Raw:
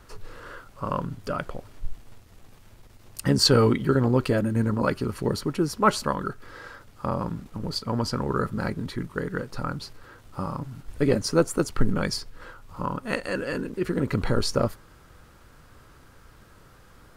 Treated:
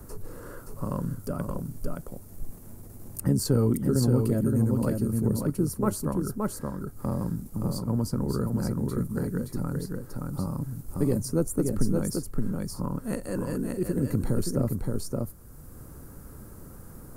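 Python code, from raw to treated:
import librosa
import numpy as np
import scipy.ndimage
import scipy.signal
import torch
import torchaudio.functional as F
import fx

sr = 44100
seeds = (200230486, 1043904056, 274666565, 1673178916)

y = fx.curve_eq(x, sr, hz=(230.0, 3200.0, 11000.0), db=(0, -21, 7))
y = y + 10.0 ** (-4.5 / 20.0) * np.pad(y, (int(572 * sr / 1000.0), 0))[:len(y)]
y = fx.band_squash(y, sr, depth_pct=40)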